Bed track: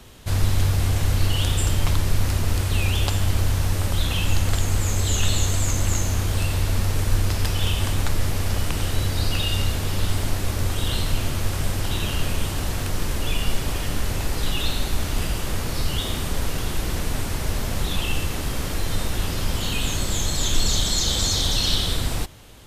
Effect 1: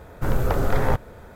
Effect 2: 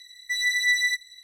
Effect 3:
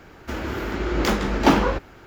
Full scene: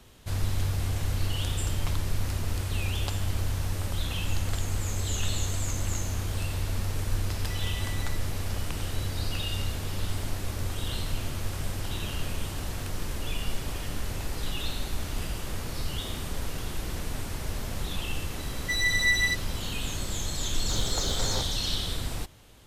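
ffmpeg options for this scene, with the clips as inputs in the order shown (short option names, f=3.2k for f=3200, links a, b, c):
-filter_complex "[2:a]asplit=2[a][b];[0:a]volume=-8dB[c];[a]acompressor=threshold=-33dB:ratio=6:attack=3.2:release=140:knee=1:detection=peak[d];[1:a]aeval=exprs='val(0)*gte(abs(val(0)),0.0316)':c=same[e];[d]atrim=end=1.23,asetpts=PTS-STARTPTS,volume=-10dB,afade=t=in:d=0.004:c=hsin,afade=t=out:st=1.226:d=0.004:c=hsin,adelay=7210[f];[b]atrim=end=1.23,asetpts=PTS-STARTPTS,volume=-2dB,afade=t=in:d=0.004:c=hsin,afade=t=out:st=1.226:d=0.004:c=hsin,adelay=18390[g];[e]atrim=end=1.35,asetpts=PTS-STARTPTS,volume=-11.5dB,afade=t=in:d=0.004:c=hsin,afade=t=out:st=1.346:d=0.004:c=hsin,adelay=20470[h];[c][f][g][h]amix=inputs=4:normalize=0"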